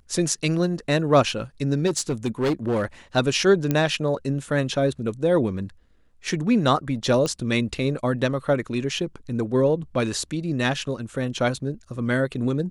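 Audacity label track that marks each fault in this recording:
1.860000	2.850000	clipping −18.5 dBFS
3.710000	3.710000	click −9 dBFS
7.260000	7.260000	click −14 dBFS

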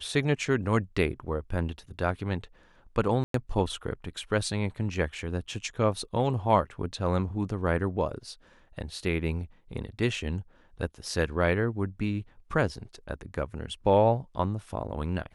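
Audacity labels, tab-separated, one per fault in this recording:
3.240000	3.340000	drop-out 103 ms

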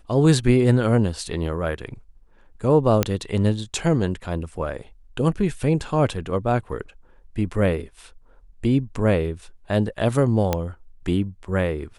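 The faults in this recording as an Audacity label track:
3.030000	3.030000	click −4 dBFS
10.530000	10.530000	click −7 dBFS

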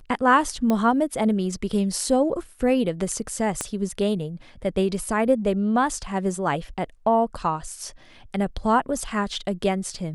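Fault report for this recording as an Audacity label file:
0.700000	0.700000	click −11 dBFS
3.610000	3.610000	click −11 dBFS

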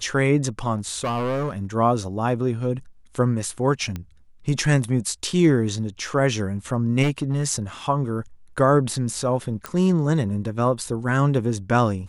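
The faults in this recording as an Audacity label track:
0.750000	1.620000	clipping −21 dBFS
3.960000	3.960000	click −17 dBFS
7.020000	7.490000	clipping −17 dBFS
9.660000	9.660000	click −13 dBFS

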